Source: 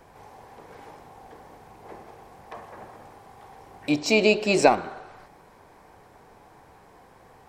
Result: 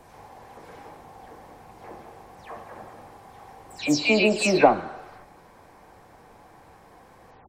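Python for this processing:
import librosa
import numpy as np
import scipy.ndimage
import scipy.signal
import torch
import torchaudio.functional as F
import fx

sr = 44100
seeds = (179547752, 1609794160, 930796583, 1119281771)

y = fx.spec_delay(x, sr, highs='early', ms=175)
y = F.gain(torch.from_numpy(y), 1.5).numpy()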